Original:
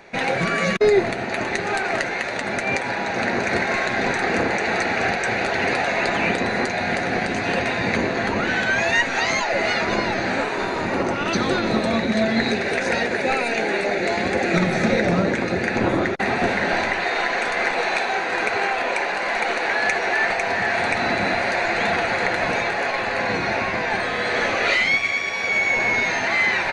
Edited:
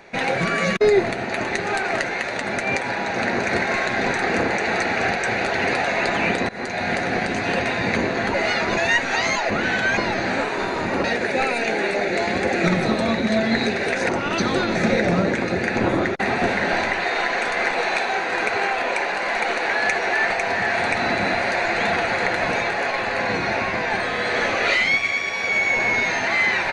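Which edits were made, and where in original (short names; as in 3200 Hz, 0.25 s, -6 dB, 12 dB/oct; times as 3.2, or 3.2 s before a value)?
6.49–6.95 fade in equal-power, from -20.5 dB
8.34–8.81 swap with 9.54–9.97
11.04–11.7 swap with 12.94–14.75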